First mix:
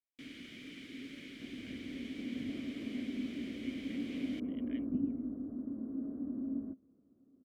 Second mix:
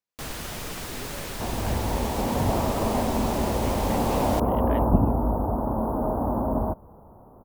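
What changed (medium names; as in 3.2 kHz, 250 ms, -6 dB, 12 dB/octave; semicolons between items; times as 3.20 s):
second sound +4.0 dB; master: remove vowel filter i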